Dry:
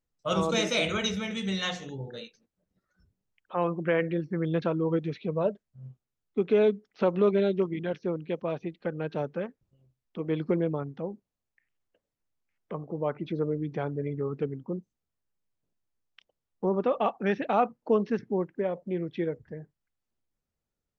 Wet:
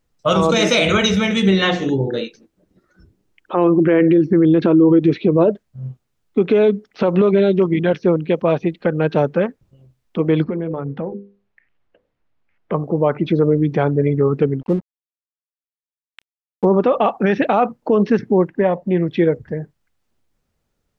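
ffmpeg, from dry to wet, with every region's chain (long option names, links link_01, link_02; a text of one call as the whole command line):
ffmpeg -i in.wav -filter_complex "[0:a]asettb=1/sr,asplit=3[link_01][link_02][link_03];[link_01]atrim=end=1.424[link_04];[link_02]atrim=start=1.42:end=5.5,asetpts=PTS-STARTPTS,afade=type=in:duration=0.004:curve=qsin,afade=type=out:start_time=4.076:duration=0.004:curve=qsin,equalizer=frequency=330:width_type=o:width=0.64:gain=11.5,acrossover=split=4100[link_05][link_06];[link_06]acompressor=threshold=-57dB:ratio=4:attack=1:release=60[link_07];[link_05][link_07]amix=inputs=2:normalize=0[link_08];[link_03]atrim=start=5.496[link_09];[link_04][link_08]acrossfade=duration=0.004:curve1=hsin:curve2=qsin[link_10];[link_10][link_09]acrossfade=duration=0.004:curve1=qsin:curve2=hsin,asettb=1/sr,asplit=3[link_11][link_12][link_13];[link_11]atrim=end=10.444[link_14];[link_12]atrim=start=10.44:end=12.72,asetpts=PTS-STARTPTS,afade=type=in:duration=0.004:curve=qsin,afade=type=out:start_time=2.276:duration=0.004:curve=qsin,lowpass=2900,bandreject=frequency=50:width_type=h:width=6,bandreject=frequency=100:width_type=h:width=6,bandreject=frequency=150:width_type=h:width=6,bandreject=frequency=200:width_type=h:width=6,bandreject=frequency=250:width_type=h:width=6,bandreject=frequency=300:width_type=h:width=6,bandreject=frequency=350:width_type=h:width=6,bandreject=frequency=400:width_type=h:width=6,bandreject=frequency=450:width_type=h:width=6,bandreject=frequency=500:width_type=h:width=6,acompressor=threshold=-35dB:ratio=8:attack=3.2:release=140:knee=1:detection=peak[link_15];[link_13]atrim=start=12.716[link_16];[link_14][link_15]acrossfade=duration=0.004:curve1=hsin:curve2=qsin[link_17];[link_17][link_16]acrossfade=duration=0.004:curve1=qsin:curve2=hsin,asettb=1/sr,asplit=3[link_18][link_19][link_20];[link_18]atrim=end=14.614[link_21];[link_19]atrim=start=14.61:end=16.65,asetpts=PTS-STARTPTS,afade=type=in:duration=0.004:curve=qsin,afade=type=out:start_time=2.036:duration=0.004:curve=qsin,aemphasis=mode=reproduction:type=50fm,aeval=exprs='sgn(val(0))*max(abs(val(0))-0.00224,0)':channel_layout=same[link_22];[link_20]atrim=start=16.646[link_23];[link_21][link_22]acrossfade=duration=0.004:curve1=hsin:curve2=qsin[link_24];[link_24][link_23]acrossfade=duration=0.004:curve1=qsin:curve2=hsin,asettb=1/sr,asplit=3[link_25][link_26][link_27];[link_25]atrim=end=18.504[link_28];[link_26]atrim=start=18.5:end=19.08,asetpts=PTS-STARTPTS,afade=type=in:duration=0.004:curve=qsin,afade=type=out:start_time=0.576:duration=0.004:curve=qsin,bass=frequency=250:gain=-2,treble=frequency=4000:gain=-5,aecho=1:1:1.1:0.36,atrim=end_sample=25578[link_29];[link_27]atrim=start=19.076[link_30];[link_28][link_29]acrossfade=duration=0.004:curve1=hsin:curve2=qsin[link_31];[link_31][link_30]acrossfade=duration=0.004:curve1=qsin:curve2=hsin,highshelf=frequency=5800:gain=-5.5,alimiter=level_in=20.5dB:limit=-1dB:release=50:level=0:latency=1,volume=-5dB" out.wav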